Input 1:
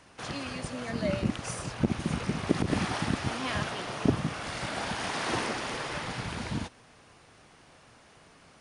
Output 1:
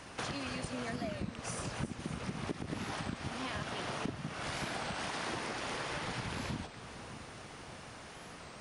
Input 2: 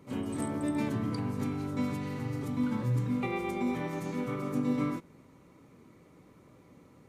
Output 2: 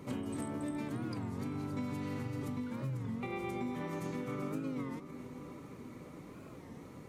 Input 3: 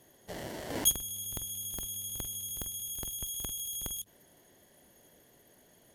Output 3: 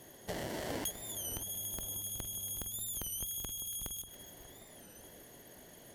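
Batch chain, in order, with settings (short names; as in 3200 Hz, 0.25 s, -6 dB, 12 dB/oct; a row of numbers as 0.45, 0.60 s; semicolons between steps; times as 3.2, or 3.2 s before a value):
compressor 12:1, threshold -42 dBFS; on a send: split-band echo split 1400 Hz, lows 0.589 s, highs 0.28 s, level -12 dB; on the sum: record warp 33 1/3 rpm, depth 160 cents; gain +6.5 dB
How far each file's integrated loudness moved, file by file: -8.0, -7.0, -4.0 LU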